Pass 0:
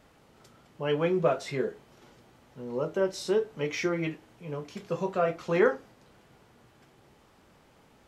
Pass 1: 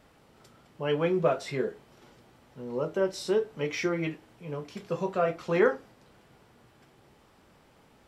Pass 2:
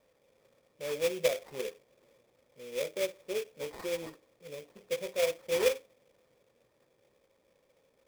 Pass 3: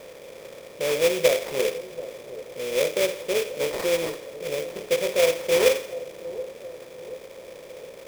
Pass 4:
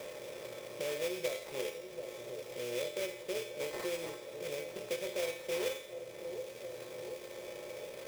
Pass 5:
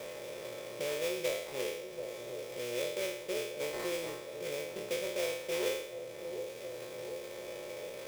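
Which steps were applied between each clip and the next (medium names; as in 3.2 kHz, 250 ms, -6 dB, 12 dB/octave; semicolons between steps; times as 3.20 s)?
band-stop 6.5 kHz, Q 17
cascade formant filter e; sample-rate reducer 2.9 kHz, jitter 20%; trim +2 dB
spectral levelling over time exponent 0.6; two-band feedback delay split 830 Hz, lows 729 ms, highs 84 ms, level -15 dB; trim +7 dB
feedback comb 120 Hz, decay 0.42 s, harmonics odd, mix 80%; three bands compressed up and down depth 70%; trim -2 dB
spectral sustain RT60 0.76 s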